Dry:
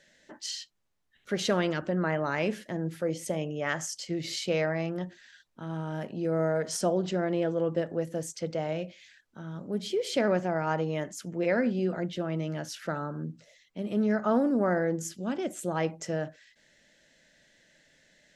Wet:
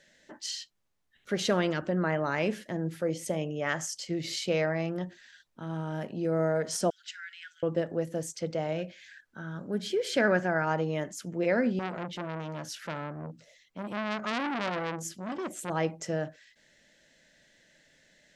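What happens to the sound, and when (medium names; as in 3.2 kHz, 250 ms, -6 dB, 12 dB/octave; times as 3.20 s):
6.90–7.63 s: Chebyshev high-pass 1.4 kHz, order 10
8.78–10.65 s: peaking EQ 1.6 kHz +11.5 dB 0.38 oct
11.79–15.70 s: transformer saturation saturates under 2.5 kHz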